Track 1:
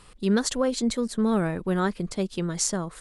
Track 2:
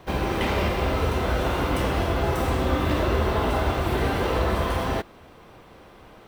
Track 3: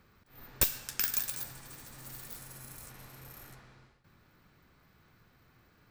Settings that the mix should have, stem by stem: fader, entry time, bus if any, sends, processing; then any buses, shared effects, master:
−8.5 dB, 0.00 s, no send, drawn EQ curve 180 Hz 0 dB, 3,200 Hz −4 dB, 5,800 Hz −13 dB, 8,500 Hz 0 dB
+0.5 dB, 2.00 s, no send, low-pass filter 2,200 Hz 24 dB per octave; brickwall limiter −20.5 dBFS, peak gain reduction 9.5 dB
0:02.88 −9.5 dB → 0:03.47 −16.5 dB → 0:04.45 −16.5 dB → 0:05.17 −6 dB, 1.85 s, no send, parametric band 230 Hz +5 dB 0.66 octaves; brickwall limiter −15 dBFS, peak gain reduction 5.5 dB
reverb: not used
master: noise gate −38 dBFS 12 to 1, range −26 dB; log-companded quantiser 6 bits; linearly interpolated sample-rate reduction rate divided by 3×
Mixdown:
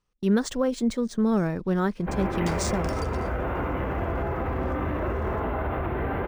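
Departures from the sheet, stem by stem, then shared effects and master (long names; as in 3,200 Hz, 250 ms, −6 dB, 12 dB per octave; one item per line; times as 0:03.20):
stem 1 −8.5 dB → +1.0 dB
stem 3: missing brickwall limiter −15 dBFS, peak gain reduction 5.5 dB
master: missing log-companded quantiser 6 bits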